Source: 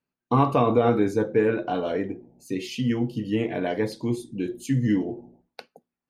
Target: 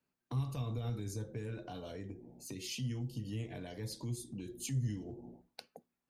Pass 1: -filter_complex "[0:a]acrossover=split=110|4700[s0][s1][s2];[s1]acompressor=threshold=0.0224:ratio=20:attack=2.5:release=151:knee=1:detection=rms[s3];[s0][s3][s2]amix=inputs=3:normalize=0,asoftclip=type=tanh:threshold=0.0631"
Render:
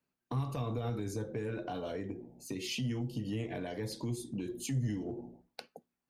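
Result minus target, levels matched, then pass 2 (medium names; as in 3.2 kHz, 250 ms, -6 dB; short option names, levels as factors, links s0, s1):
compression: peak gain reduction -8 dB
-filter_complex "[0:a]acrossover=split=110|4700[s0][s1][s2];[s1]acompressor=threshold=0.00841:ratio=20:attack=2.5:release=151:knee=1:detection=rms[s3];[s0][s3][s2]amix=inputs=3:normalize=0,asoftclip=type=tanh:threshold=0.0631"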